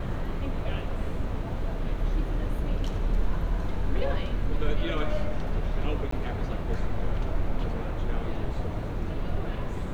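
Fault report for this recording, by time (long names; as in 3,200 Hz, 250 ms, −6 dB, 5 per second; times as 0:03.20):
0:06.11–0:06.12: drop-out 14 ms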